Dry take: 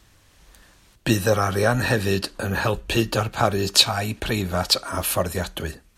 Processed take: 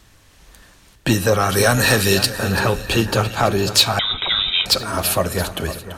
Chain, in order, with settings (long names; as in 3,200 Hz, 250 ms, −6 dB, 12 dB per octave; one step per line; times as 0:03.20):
0:01.49–0:02.30: high-shelf EQ 2,900 Hz +12 dB
soft clipping −10 dBFS, distortion −16 dB
echo with a time of its own for lows and highs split 1,900 Hz, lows 506 ms, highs 336 ms, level −12.5 dB
convolution reverb RT60 1.5 s, pre-delay 4 ms, DRR 16.5 dB
0:03.99–0:04.66: voice inversion scrambler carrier 3,800 Hz
level +4.5 dB